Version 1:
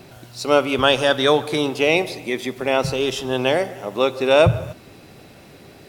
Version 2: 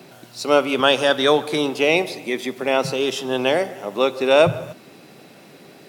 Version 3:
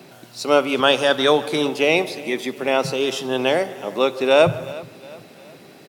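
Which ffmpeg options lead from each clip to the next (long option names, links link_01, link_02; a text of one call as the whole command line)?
ffmpeg -i in.wav -af "highpass=frequency=150:width=0.5412,highpass=frequency=150:width=1.3066" out.wav
ffmpeg -i in.wav -af "aecho=1:1:362|724|1086:0.106|0.0466|0.0205" out.wav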